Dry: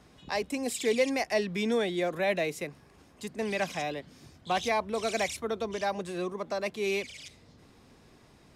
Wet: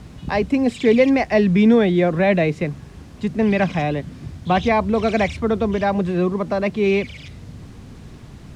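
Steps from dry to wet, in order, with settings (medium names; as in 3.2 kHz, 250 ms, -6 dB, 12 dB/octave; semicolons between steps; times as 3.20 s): tone controls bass +13 dB, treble -11 dB; in parallel at -9 dB: word length cut 8-bit, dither triangular; on the sum: distance through air 76 m; trim +7.5 dB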